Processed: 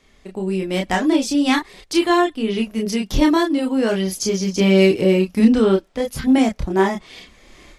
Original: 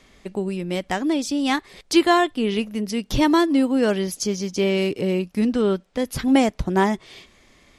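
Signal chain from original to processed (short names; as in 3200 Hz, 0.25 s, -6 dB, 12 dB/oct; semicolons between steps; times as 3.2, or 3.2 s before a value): AGC gain up to 13.5 dB; chorus voices 6, 0.29 Hz, delay 29 ms, depth 2.9 ms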